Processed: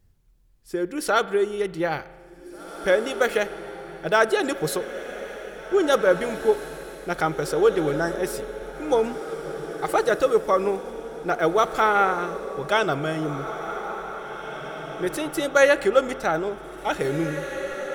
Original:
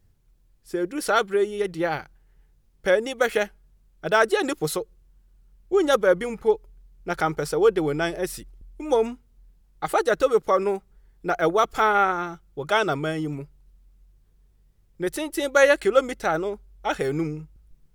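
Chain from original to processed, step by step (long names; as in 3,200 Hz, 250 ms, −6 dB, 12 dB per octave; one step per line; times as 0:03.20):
time-frequency box erased 0:07.95–0:08.19, 2,000–4,800 Hz
feedback delay with all-pass diffusion 1,952 ms, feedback 44%, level −10.5 dB
spring reverb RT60 1.6 s, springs 36 ms, chirp 20 ms, DRR 16 dB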